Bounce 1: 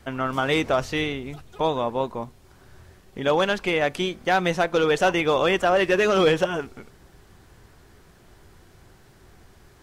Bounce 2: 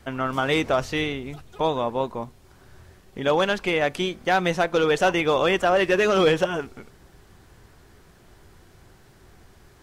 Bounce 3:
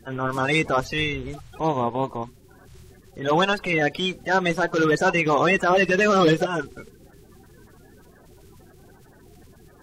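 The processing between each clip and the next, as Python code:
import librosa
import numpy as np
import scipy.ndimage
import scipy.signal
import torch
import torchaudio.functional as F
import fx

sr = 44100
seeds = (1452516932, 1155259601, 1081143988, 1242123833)

y1 = x
y2 = fx.spec_quant(y1, sr, step_db=30)
y2 = fx.transient(y2, sr, attack_db=-7, sustain_db=-2)
y2 = y2 * 10.0 ** (3.0 / 20.0)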